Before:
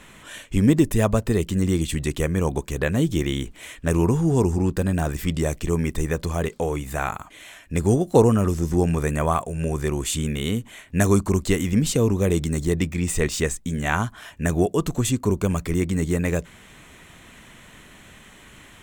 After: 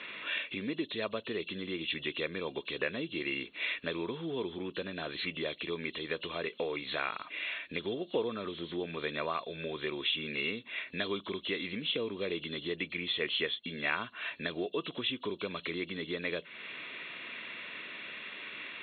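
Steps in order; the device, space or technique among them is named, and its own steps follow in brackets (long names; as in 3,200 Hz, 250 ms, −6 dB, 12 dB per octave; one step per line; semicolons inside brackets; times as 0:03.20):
hearing aid with frequency lowering (hearing-aid frequency compression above 2,600 Hz 4 to 1; downward compressor 3 to 1, threshold −33 dBFS, peak gain reduction 17 dB; loudspeaker in its box 380–6,000 Hz, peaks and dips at 800 Hz −10 dB, 2,300 Hz +8 dB, 3,800 Hz −6 dB, 5,500 Hz +10 dB)
level +2.5 dB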